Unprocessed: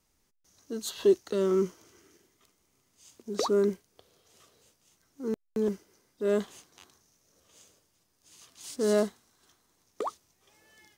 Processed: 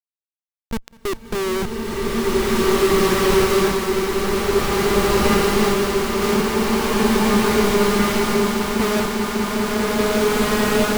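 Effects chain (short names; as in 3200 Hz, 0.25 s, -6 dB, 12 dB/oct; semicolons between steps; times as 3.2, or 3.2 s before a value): half-wave gain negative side -3 dB; harmonic-percussive split harmonic +8 dB; Schmitt trigger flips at -25.5 dBFS; swelling echo 0.2 s, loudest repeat 8, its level -13.5 dB; bloom reverb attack 1.92 s, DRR -10.5 dB; gain +4.5 dB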